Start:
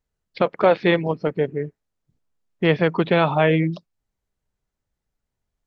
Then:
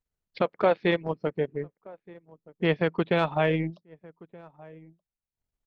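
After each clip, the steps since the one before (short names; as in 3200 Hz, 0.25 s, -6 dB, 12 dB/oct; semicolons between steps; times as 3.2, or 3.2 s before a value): outdoor echo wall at 210 m, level -22 dB; transient shaper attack +1 dB, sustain -11 dB; gain -6.5 dB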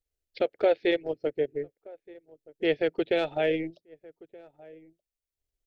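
fixed phaser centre 440 Hz, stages 4; gain +1 dB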